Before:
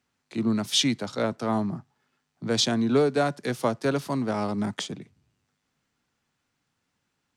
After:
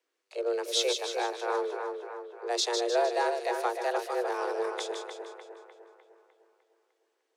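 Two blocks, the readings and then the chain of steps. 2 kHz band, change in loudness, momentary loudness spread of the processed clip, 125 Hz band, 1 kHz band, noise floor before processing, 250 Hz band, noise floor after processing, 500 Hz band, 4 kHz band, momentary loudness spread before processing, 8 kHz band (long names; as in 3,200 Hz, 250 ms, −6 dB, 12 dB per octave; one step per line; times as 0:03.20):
−1.5 dB, −4.5 dB, 15 LU, below −40 dB, +1.0 dB, −78 dBFS, −16.0 dB, −79 dBFS, −1.0 dB, −4.5 dB, 13 LU, −3.5 dB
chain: frequency shifter +240 Hz
echo with a time of its own for lows and highs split 2,400 Hz, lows 302 ms, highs 153 ms, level −5.5 dB
level −5.5 dB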